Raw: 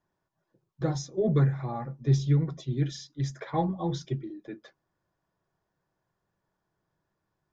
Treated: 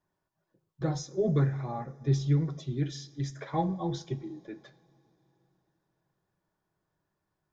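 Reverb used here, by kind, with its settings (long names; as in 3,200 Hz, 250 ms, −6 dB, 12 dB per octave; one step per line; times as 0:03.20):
coupled-rooms reverb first 0.44 s, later 3.8 s, from −19 dB, DRR 11 dB
level −2 dB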